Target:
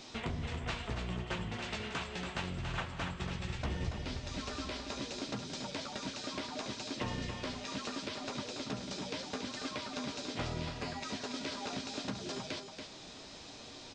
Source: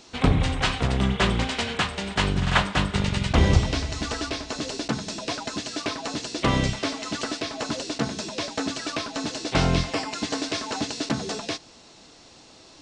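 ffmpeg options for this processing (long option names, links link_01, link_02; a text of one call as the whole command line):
ffmpeg -i in.wav -filter_complex "[0:a]acompressor=threshold=-41dB:ratio=3,flanger=delay=7:depth=8.1:regen=-36:speed=0.79:shape=sinusoidal,asetrate=40517,aresample=44100,asplit=2[link_01][link_02];[link_02]aecho=0:1:282:0.447[link_03];[link_01][link_03]amix=inputs=2:normalize=0,volume=3.5dB" out.wav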